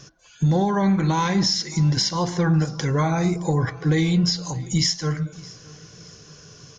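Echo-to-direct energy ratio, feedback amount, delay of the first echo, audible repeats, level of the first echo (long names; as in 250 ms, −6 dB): −21.0 dB, 45%, 618 ms, 2, −22.0 dB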